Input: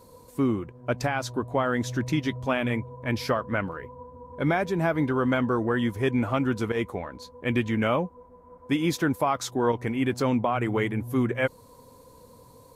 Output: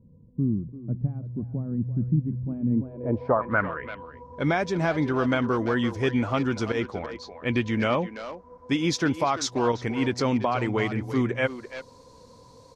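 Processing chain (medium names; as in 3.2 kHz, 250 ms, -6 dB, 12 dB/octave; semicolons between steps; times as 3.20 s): 6.79–7.71 s: treble shelf 4.8 kHz -> 8.9 kHz -10 dB; speakerphone echo 340 ms, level -10 dB; low-pass sweep 180 Hz -> 5.6 kHz, 2.60–4.21 s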